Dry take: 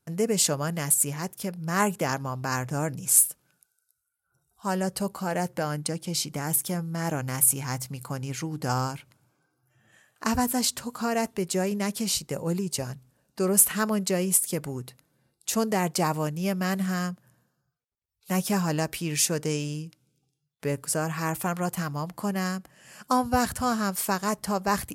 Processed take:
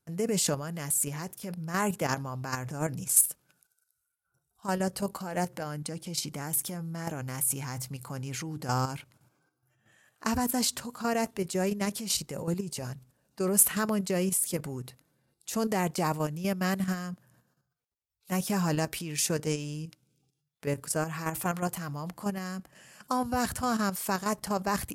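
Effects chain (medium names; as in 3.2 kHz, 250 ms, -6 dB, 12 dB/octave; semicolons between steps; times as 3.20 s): transient shaper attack -2 dB, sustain +4 dB; level held to a coarse grid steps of 9 dB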